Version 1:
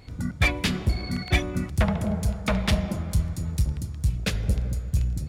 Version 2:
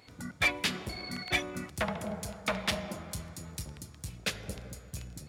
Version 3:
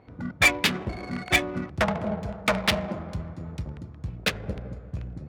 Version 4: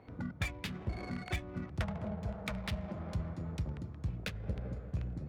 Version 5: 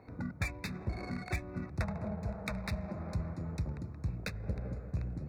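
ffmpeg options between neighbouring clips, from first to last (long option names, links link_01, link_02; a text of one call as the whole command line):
ffmpeg -i in.wav -af "highpass=frequency=540:poles=1,volume=-2.5dB" out.wav
ffmpeg -i in.wav -af "adynamicsmooth=sensitivity=5:basefreq=1000,volume=8.5dB" out.wav
ffmpeg -i in.wav -filter_complex "[0:a]acrossover=split=140[link_01][link_02];[link_02]acompressor=threshold=-37dB:ratio=8[link_03];[link_01][link_03]amix=inputs=2:normalize=0,volume=-2.5dB" out.wav
ffmpeg -i in.wav -af "asuperstop=centerf=3100:order=12:qfactor=3.1,volume=1dB" out.wav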